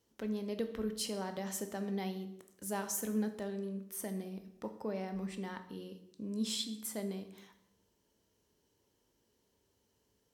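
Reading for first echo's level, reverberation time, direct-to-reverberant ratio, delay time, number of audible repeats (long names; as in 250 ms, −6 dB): no echo audible, 0.80 s, 7.5 dB, no echo audible, no echo audible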